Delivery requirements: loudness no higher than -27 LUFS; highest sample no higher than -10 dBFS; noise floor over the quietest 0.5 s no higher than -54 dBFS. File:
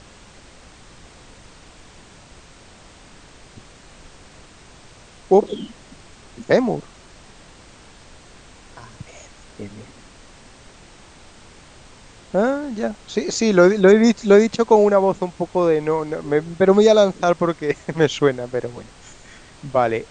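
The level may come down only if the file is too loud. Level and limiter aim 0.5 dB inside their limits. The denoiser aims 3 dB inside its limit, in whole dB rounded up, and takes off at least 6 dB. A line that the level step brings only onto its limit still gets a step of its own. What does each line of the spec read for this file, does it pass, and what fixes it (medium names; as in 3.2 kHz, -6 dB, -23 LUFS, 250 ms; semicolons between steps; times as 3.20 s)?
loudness -18.0 LUFS: fail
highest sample -2.0 dBFS: fail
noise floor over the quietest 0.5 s -46 dBFS: fail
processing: trim -9.5 dB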